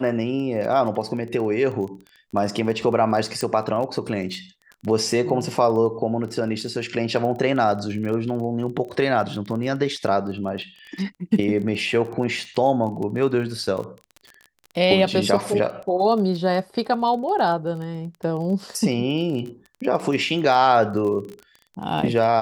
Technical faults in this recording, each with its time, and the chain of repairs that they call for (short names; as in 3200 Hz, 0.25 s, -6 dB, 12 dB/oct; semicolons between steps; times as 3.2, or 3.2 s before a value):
crackle 22/s -30 dBFS
3.41 pop -13 dBFS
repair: de-click